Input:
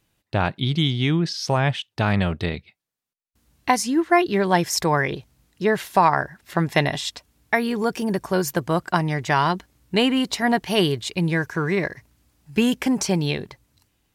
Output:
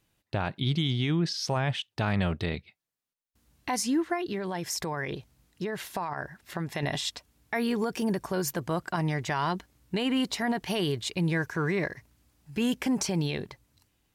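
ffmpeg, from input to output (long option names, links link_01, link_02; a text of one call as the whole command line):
ffmpeg -i in.wav -filter_complex "[0:a]alimiter=limit=-15.5dB:level=0:latency=1:release=44,asettb=1/sr,asplit=3[link_01][link_02][link_03];[link_01]atrim=end=4.134[link_04];[link_02]atrim=start=4.13:end=6.83,asetpts=PTS-STARTPTS,afade=type=in:duration=0.004:curve=qsin,afade=type=out:start_time=2.696:duration=0.004:curve=qsin,acompressor=threshold=-25dB:ratio=6[link_05];[link_03]atrim=start=6.826[link_06];[link_04][link_05]acrossfade=duration=0.004:curve1=hsin:curve2=qsin[link_07];[link_07][link_06]acrossfade=duration=0.004:curve1=qsin:curve2=hsin,volume=-3.5dB" out.wav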